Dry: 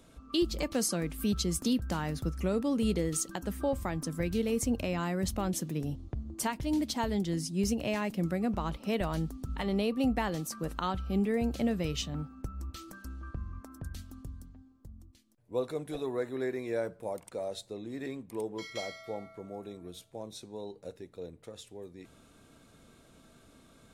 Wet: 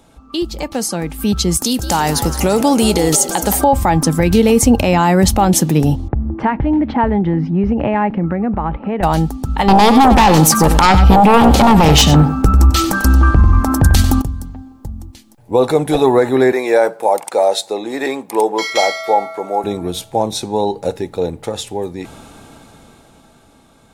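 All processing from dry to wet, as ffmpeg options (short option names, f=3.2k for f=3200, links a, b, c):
-filter_complex "[0:a]asettb=1/sr,asplit=3[a][b][c];[a]atrim=end=1.574[d];[b]atrim=start=1.57:end=3.64,asetpts=PTS-STARTPTS,afade=t=in:d=0.004:c=qsin,afade=t=out:st=2.066:d=0.004:c=qsin,bass=f=250:g=-5,treble=f=4k:g=11,acompressor=threshold=-30dB:ratio=6:attack=3.2:release=140:knee=1:detection=peak,asplit=8[e][f][g][h][i][j][k][l];[f]adelay=171,afreqshift=83,volume=-14dB[m];[g]adelay=342,afreqshift=166,volume=-18.3dB[n];[h]adelay=513,afreqshift=249,volume=-22.6dB[o];[i]adelay=684,afreqshift=332,volume=-26.9dB[p];[j]adelay=855,afreqshift=415,volume=-31.2dB[q];[k]adelay=1026,afreqshift=498,volume=-35.5dB[r];[l]adelay=1197,afreqshift=581,volume=-39.8dB[s];[e][m][n][o][p][q][r][s]amix=inputs=8:normalize=0,atrim=end_sample=91287[t];[c]atrim=start=3.636[u];[d][t]acrossfade=d=0.004:c1=hsin:c2=qsin[v];[v][u]acrossfade=d=0.004:c1=qsin:c2=hsin,asettb=1/sr,asplit=3[w][x][y];[w]atrim=end=6.084[z];[x]atrim=start=6.08:end=9.03,asetpts=PTS-STARTPTS,afade=t=in:d=0.004:c=qsin,afade=t=out:st=2.946:d=0.004:c=qsin,lowpass=f=2k:w=0.5412,lowpass=f=2k:w=1.3066,equalizer=f=810:t=o:w=0.9:g=-4.5,acompressor=threshold=-34dB:ratio=4:attack=3.2:release=140:knee=1:detection=peak[aa];[y]atrim=start=9.026[ab];[z][aa]acrossfade=d=0.004:c1=hsin:c2=qsin[ac];[ac][ab]acrossfade=d=0.004:c1=qsin:c2=hsin,asettb=1/sr,asplit=3[ad][ae][af];[ad]atrim=end=9.684[ag];[ae]atrim=start=9.68:end=14.22,asetpts=PTS-STARTPTS,afade=t=in:d=0.004:c=qsin,afade=t=out:st=4.536:d=0.004:c=qsin,aeval=exprs='0.119*sin(PI/2*3.16*val(0)/0.119)':c=same,aecho=1:1:95:0.224,atrim=end_sample=200214[ah];[af]atrim=start=14.216[ai];[ag][ah]acrossfade=d=0.004:c1=hsin:c2=qsin[aj];[aj][ai]acrossfade=d=0.004:c1=qsin:c2=hsin,asettb=1/sr,asplit=3[ak][al][am];[ak]atrim=end=16.524[an];[al]atrim=start=16.52:end=19.64,asetpts=PTS-STARTPTS,afade=t=in:d=0.004:c=qsin,afade=t=out:st=3.116:d=0.004:c=qsin,highpass=420,equalizer=f=3k:w=6.5:g=-3[ao];[am]atrim=start=19.636[ap];[an][ao]acrossfade=d=0.004:c1=hsin:c2=qsin[aq];[aq][ap]acrossfade=d=0.004:c1=qsin:c2=hsin,equalizer=f=830:t=o:w=0.25:g=13.5,dynaudnorm=f=110:g=31:m=15.5dB,alimiter=level_in=9dB:limit=-1dB:release=50:level=0:latency=1,volume=-1dB"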